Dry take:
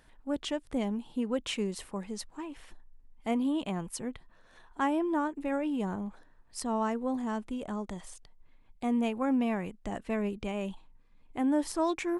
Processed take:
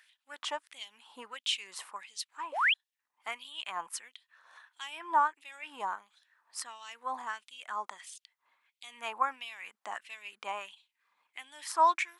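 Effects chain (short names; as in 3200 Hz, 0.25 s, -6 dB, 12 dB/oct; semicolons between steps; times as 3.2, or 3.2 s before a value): dynamic EQ 990 Hz, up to +4 dB, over -47 dBFS, Q 2.1; painted sound rise, 2.52–2.74, 490–3500 Hz -32 dBFS; LFO high-pass sine 1.5 Hz 950–3400 Hz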